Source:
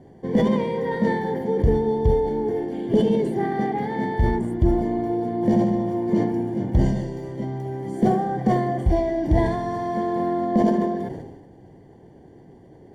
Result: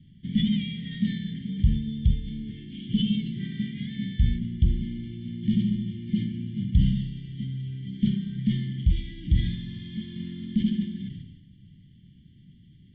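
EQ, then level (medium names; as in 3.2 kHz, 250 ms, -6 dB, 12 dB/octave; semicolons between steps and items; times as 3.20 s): Chebyshev band-stop 200–2500 Hz, order 3; resonant low-pass 3.3 kHz, resonance Q 5.9; distance through air 270 m; 0.0 dB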